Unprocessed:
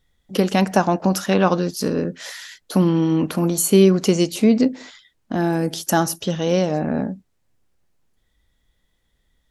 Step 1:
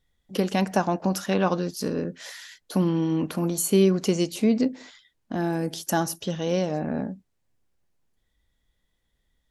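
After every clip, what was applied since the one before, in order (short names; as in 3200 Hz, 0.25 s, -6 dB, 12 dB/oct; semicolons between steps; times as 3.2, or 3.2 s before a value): notch 1300 Hz, Q 27; gain -6 dB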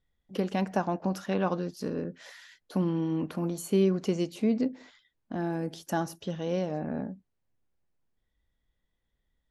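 high shelf 4300 Hz -11 dB; gain -5 dB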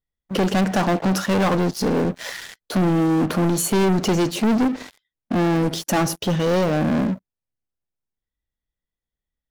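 sample leveller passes 5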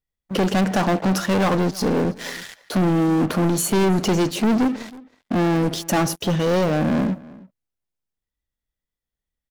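outdoor echo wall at 55 m, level -21 dB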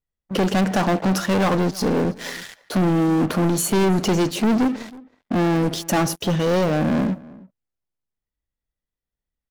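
mismatched tape noise reduction decoder only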